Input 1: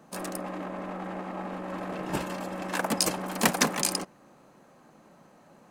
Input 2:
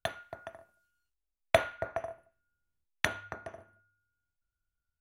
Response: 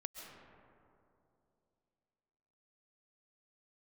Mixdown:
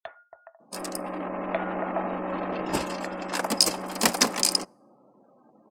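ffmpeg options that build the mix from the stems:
-filter_complex "[0:a]adelay=600,volume=-1.5dB[link_01];[1:a]acrossover=split=520 2400:gain=0.224 1 0.178[link_02][link_03][link_04];[link_02][link_03][link_04]amix=inputs=3:normalize=0,alimiter=limit=-18.5dB:level=0:latency=1:release=210,volume=-3dB[link_05];[link_01][link_05]amix=inputs=2:normalize=0,afftdn=noise_reduction=29:noise_floor=-55,equalizer=frequency=100:width_type=o:width=0.33:gain=-12,equalizer=frequency=160:width_type=o:width=0.33:gain=-10,equalizer=frequency=1600:width_type=o:width=0.33:gain=-3,equalizer=frequency=5000:width_type=o:width=0.33:gain=8,equalizer=frequency=8000:width_type=o:width=0.33:gain=4,dynaudnorm=framelen=330:gausssize=7:maxgain=8dB"

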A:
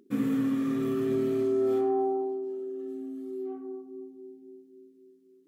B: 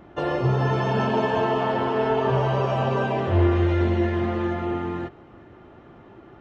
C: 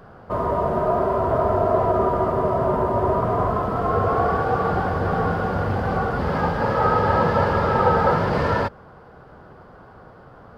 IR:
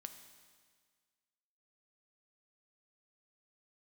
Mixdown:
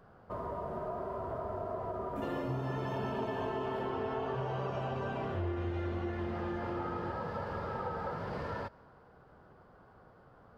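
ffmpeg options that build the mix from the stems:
-filter_complex "[0:a]adelay=2050,volume=-7dB[link_01];[1:a]adelay=2050,volume=-5dB[link_02];[2:a]volume=-15dB,asplit=2[link_03][link_04];[link_04]volume=-10dB[link_05];[3:a]atrim=start_sample=2205[link_06];[link_05][link_06]afir=irnorm=-1:irlink=0[link_07];[link_01][link_02][link_03][link_07]amix=inputs=4:normalize=0,acompressor=threshold=-36dB:ratio=3"

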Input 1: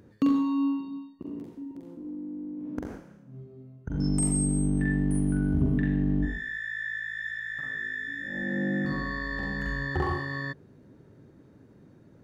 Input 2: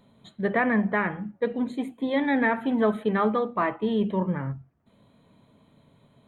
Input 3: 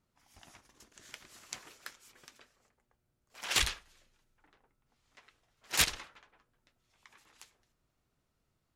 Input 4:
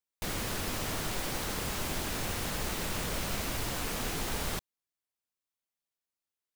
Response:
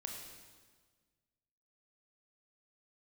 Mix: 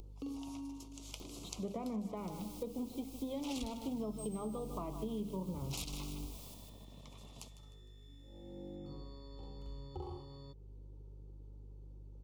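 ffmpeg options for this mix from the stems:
-filter_complex "[0:a]aeval=exprs='val(0)+0.00891*(sin(2*PI*50*n/s)+sin(2*PI*2*50*n/s)/2+sin(2*PI*3*50*n/s)/3+sin(2*PI*4*50*n/s)/4+sin(2*PI*5*50*n/s)/5)':channel_layout=same,aecho=1:1:2.3:0.68,acompressor=mode=upward:threshold=-29dB:ratio=2.5,volume=-16.5dB[link_01];[1:a]acompressor=mode=upward:threshold=-34dB:ratio=2.5,aeval=exprs='sgn(val(0))*max(abs(val(0))-0.00355,0)':channel_layout=same,adelay=1200,volume=-6dB,asplit=2[link_02][link_03];[link_03]volume=-14dB[link_04];[2:a]alimiter=limit=-20.5dB:level=0:latency=1:release=176,volume=3dB,asplit=2[link_05][link_06];[link_06]volume=-15dB[link_07];[3:a]highpass=frequency=1000:poles=1,aeval=exprs='0.0631*(cos(1*acos(clip(val(0)/0.0631,-1,1)))-cos(1*PI/2))+0.0141*(cos(8*acos(clip(val(0)/0.0631,-1,1)))-cos(8*PI/2))':channel_layout=same,aeval=exprs='0.0158*(abs(mod(val(0)/0.0158+3,4)-2)-1)':channel_layout=same,adelay=1950,volume=-12dB,asplit=2[link_08][link_09];[link_09]volume=-4dB[link_10];[link_04][link_07][link_10]amix=inputs=3:normalize=0,aecho=0:1:153|306|459|612|765:1|0.37|0.137|0.0507|0.0187[link_11];[link_01][link_02][link_05][link_08][link_11]amix=inputs=5:normalize=0,acrossover=split=300[link_12][link_13];[link_13]acompressor=threshold=-35dB:ratio=3[link_14];[link_12][link_14]amix=inputs=2:normalize=0,asuperstop=centerf=1700:order=4:qfactor=1.1,acompressor=threshold=-39dB:ratio=3"

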